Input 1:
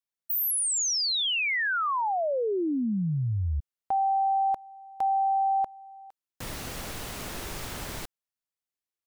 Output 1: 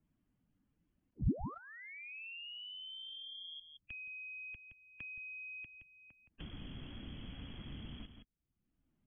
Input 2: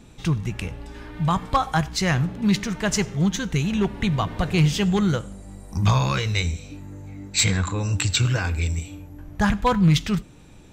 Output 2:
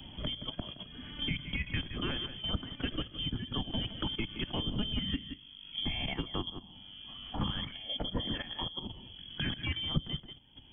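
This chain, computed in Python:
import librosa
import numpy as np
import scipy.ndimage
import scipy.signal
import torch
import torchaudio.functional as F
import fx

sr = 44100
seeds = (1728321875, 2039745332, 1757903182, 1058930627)

p1 = fx.spec_quant(x, sr, step_db=15)
p2 = fx.high_shelf(p1, sr, hz=2200.0, db=11.0)
p3 = p2 + fx.echo_single(p2, sr, ms=169, db=-12.0, dry=0)
p4 = fx.freq_invert(p3, sr, carrier_hz=3300)
p5 = fx.level_steps(p4, sr, step_db=11)
p6 = fx.curve_eq(p5, sr, hz=(270.0, 420.0, 940.0), db=(0, -16, -22))
p7 = fx.band_squash(p6, sr, depth_pct=70)
y = F.gain(torch.from_numpy(p7), 6.0).numpy()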